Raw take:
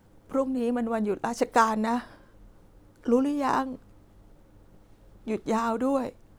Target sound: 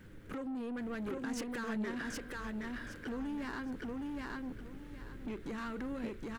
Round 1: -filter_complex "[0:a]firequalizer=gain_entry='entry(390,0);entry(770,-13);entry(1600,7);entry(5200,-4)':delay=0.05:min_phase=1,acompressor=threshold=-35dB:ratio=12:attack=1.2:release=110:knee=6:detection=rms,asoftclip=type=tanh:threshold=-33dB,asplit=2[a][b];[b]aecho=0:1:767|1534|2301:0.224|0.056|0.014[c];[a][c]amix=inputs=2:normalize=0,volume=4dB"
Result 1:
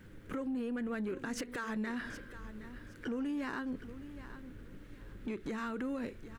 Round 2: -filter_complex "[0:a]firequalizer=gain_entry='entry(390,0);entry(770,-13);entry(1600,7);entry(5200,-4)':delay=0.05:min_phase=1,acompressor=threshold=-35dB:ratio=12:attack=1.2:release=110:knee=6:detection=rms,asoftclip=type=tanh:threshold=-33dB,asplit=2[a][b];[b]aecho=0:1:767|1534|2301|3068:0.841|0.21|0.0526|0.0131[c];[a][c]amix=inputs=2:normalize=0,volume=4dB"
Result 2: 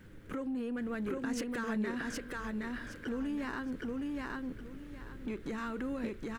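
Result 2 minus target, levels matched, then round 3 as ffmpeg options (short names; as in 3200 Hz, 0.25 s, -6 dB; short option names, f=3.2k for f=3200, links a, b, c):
soft clip: distortion -9 dB
-filter_complex "[0:a]firequalizer=gain_entry='entry(390,0);entry(770,-13);entry(1600,7);entry(5200,-4)':delay=0.05:min_phase=1,acompressor=threshold=-35dB:ratio=12:attack=1.2:release=110:knee=6:detection=rms,asoftclip=type=tanh:threshold=-40dB,asplit=2[a][b];[b]aecho=0:1:767|1534|2301|3068:0.841|0.21|0.0526|0.0131[c];[a][c]amix=inputs=2:normalize=0,volume=4dB"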